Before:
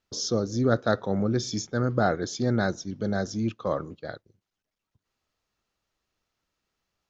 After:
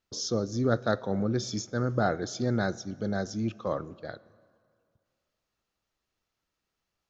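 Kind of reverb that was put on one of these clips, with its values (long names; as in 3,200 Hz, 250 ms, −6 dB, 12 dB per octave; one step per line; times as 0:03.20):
dense smooth reverb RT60 2.2 s, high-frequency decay 0.7×, DRR 19.5 dB
level −3 dB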